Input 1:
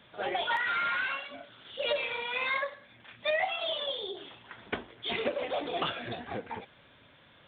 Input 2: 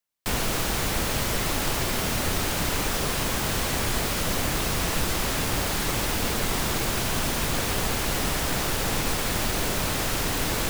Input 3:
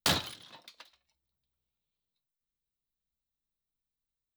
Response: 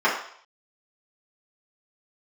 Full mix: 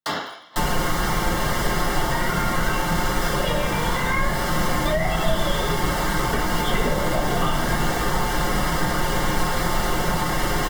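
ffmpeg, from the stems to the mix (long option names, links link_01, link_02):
-filter_complex "[0:a]dynaudnorm=framelen=150:gausssize=17:maxgain=11dB,adelay=1600,volume=-2dB,asplit=2[link_01][link_02];[link_02]volume=-12dB[link_03];[1:a]aecho=1:1:5.6:0.7,adelay=300,volume=2.5dB,asplit=2[link_04][link_05];[link_05]volume=-12dB[link_06];[2:a]highpass=130,volume=-3.5dB,asplit=2[link_07][link_08];[link_08]volume=-7.5dB[link_09];[3:a]atrim=start_sample=2205[link_10];[link_03][link_06][link_09]amix=inputs=3:normalize=0[link_11];[link_11][link_10]afir=irnorm=-1:irlink=0[link_12];[link_01][link_04][link_07][link_12]amix=inputs=4:normalize=0,acrossover=split=210[link_13][link_14];[link_14]acompressor=threshold=-22dB:ratio=6[link_15];[link_13][link_15]amix=inputs=2:normalize=0,asuperstop=centerf=2500:order=8:qfactor=7.6"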